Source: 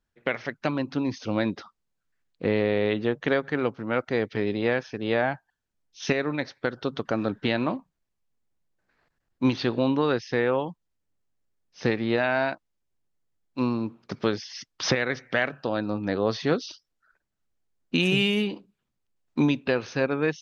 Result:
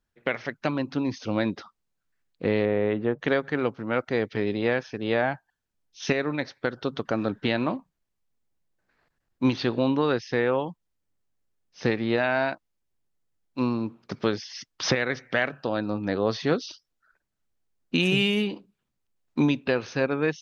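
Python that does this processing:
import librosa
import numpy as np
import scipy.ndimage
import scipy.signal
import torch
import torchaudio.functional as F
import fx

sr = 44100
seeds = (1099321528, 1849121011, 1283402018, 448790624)

y = fx.lowpass(x, sr, hz=1800.0, slope=12, at=(2.65, 3.19))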